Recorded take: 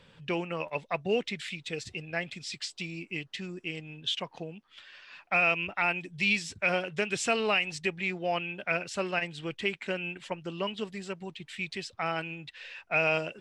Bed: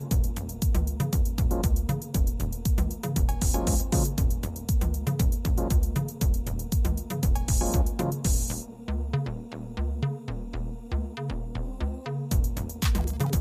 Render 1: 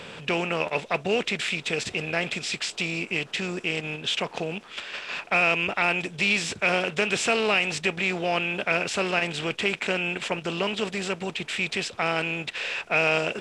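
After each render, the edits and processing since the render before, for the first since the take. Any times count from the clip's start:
compressor on every frequency bin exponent 0.6
in parallel at −2 dB: output level in coarse steps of 19 dB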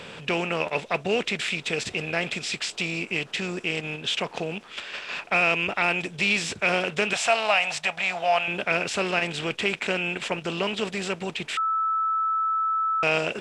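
0:07.13–0:08.48: low shelf with overshoot 510 Hz −9.5 dB, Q 3
0:11.57–0:13.03: beep over 1,310 Hz −21.5 dBFS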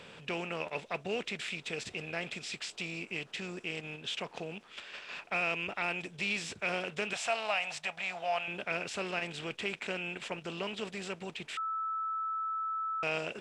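level −10.5 dB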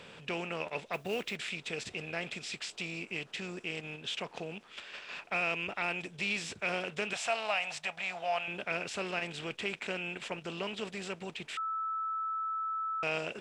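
0:00.93–0:01.36: log-companded quantiser 6 bits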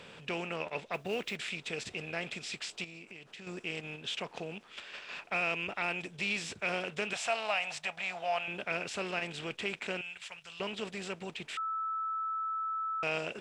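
0:00.56–0:01.23: high-shelf EQ 9,300 Hz −7.5 dB
0:02.84–0:03.47: downward compressor, threshold −45 dBFS
0:10.01–0:10.60: guitar amp tone stack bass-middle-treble 10-0-10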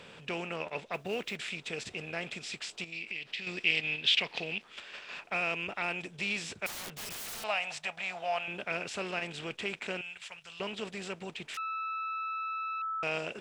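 0:02.92–0:04.62: flat-topped bell 3,100 Hz +12 dB
0:06.66–0:07.44: wrap-around overflow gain 36 dB
0:11.54–0:12.82: phase distortion by the signal itself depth 0.084 ms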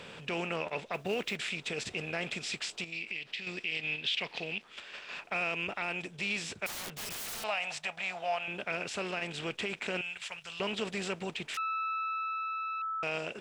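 speech leveller 2 s
brickwall limiter −23 dBFS, peak gain reduction 9 dB

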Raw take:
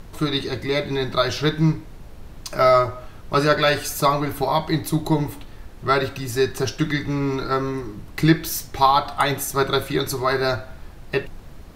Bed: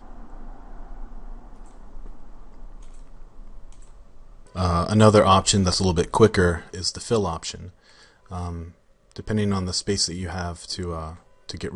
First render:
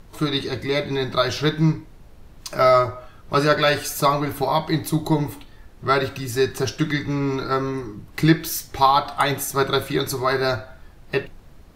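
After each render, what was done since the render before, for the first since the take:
noise reduction from a noise print 6 dB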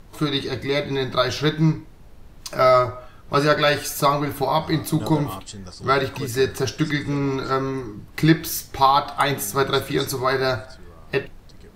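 mix in bed −18 dB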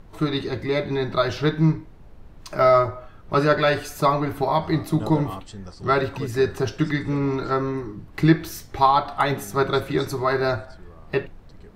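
high-shelf EQ 3,500 Hz −11.5 dB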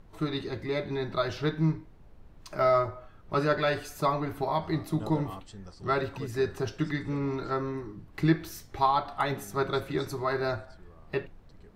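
level −7.5 dB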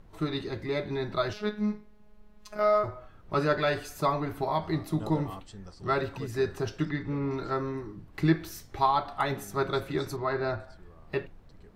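0:01.33–0:02.84: phases set to zero 210 Hz
0:06.85–0:07.31: high-frequency loss of the air 160 metres
0:10.16–0:10.60: high-frequency loss of the air 140 metres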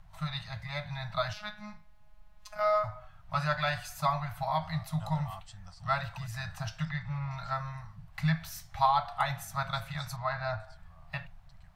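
elliptic band-stop filter 160–680 Hz, stop band 50 dB

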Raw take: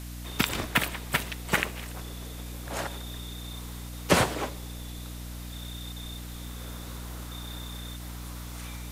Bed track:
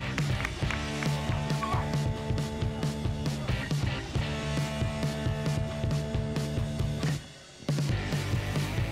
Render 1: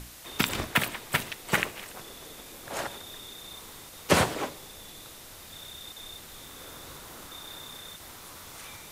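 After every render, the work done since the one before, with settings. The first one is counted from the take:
mains-hum notches 60/120/180/240/300 Hz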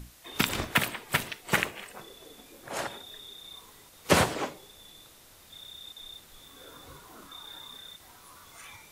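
noise reduction from a noise print 8 dB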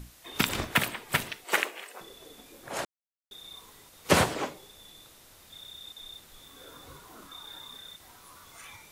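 0:01.44–0:02.01: high-pass filter 310 Hz 24 dB per octave
0:02.85–0:03.31: silence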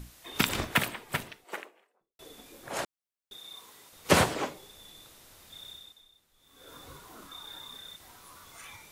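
0:00.58–0:02.19: fade out and dull
0:03.37–0:03.93: high-pass filter 290 Hz 6 dB per octave
0:05.71–0:06.74: duck −17.5 dB, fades 0.45 s quadratic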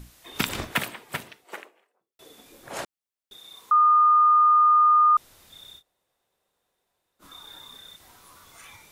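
0:00.73–0:02.46: high-pass filter 130 Hz 6 dB per octave
0:03.71–0:05.17: beep over 1,220 Hz −14 dBFS
0:05.80–0:07.22: fill with room tone, crossfade 0.06 s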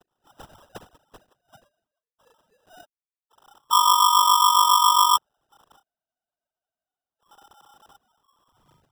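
three sine waves on the formant tracks
decimation without filtering 20×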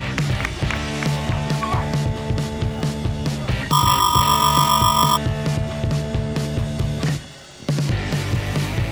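mix in bed track +8 dB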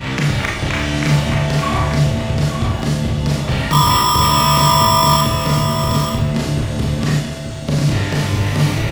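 single-tap delay 885 ms −8 dB
four-comb reverb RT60 0.54 s, combs from 27 ms, DRR −3 dB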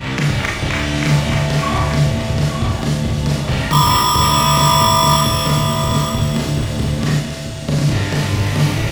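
delay with a high-pass on its return 273 ms, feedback 52%, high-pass 2,500 Hz, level −6.5 dB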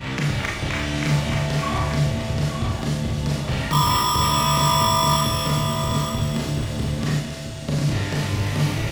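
level −6 dB

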